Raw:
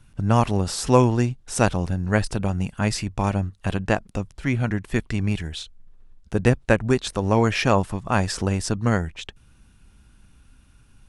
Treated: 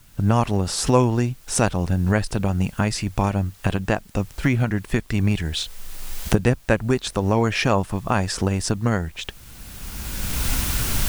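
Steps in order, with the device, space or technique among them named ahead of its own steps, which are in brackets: cheap recorder with automatic gain (white noise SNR 33 dB; recorder AGC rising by 20 dB/s); gain -1 dB

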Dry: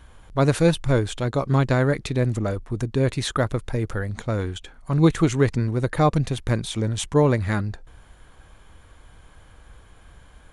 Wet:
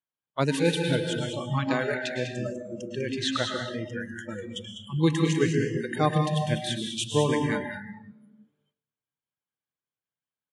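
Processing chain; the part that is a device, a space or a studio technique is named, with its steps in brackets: reverb removal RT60 1.9 s; PA in a hall (HPF 130 Hz 24 dB/oct; bell 3000 Hz +6.5 dB 1.3 oct; echo 0.198 s -7.5 dB; reverb RT60 2.0 s, pre-delay 0.1 s, DRR 1.5 dB); gate -47 dBFS, range -14 dB; spectral noise reduction 26 dB; 1.94–4 LPF 7600 Hz 24 dB/oct; gain -5 dB

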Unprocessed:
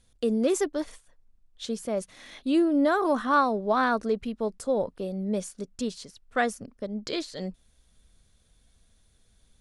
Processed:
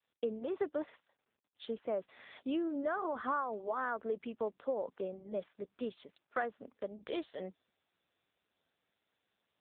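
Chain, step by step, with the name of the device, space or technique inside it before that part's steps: expander -52 dBFS; dynamic EQ 2200 Hz, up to -5 dB, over -53 dBFS, Q 5.5; voicemail (BPF 360–3000 Hz; compressor 12:1, threshold -27 dBFS, peak gain reduction 11 dB; gain -2.5 dB; AMR-NB 7.95 kbps 8000 Hz)

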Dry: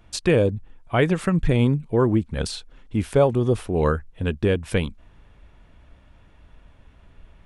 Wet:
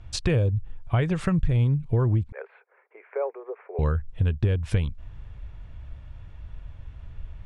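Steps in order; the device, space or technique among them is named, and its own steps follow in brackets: jukebox (LPF 7400 Hz 12 dB/oct; resonant low shelf 160 Hz +10 dB, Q 1.5; compressor 5:1, threshold -20 dBFS, peak gain reduction 12.5 dB); 2.32–3.79 Chebyshev band-pass 400–2300 Hz, order 5

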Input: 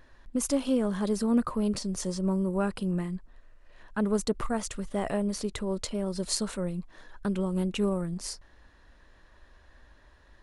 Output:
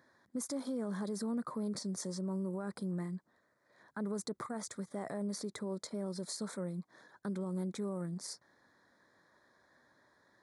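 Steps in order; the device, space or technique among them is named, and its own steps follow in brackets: PA system with an anti-feedback notch (HPF 130 Hz 24 dB/oct; Butterworth band-stop 2800 Hz, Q 2; limiter -24.5 dBFS, peak gain reduction 11.5 dB); gain -6 dB

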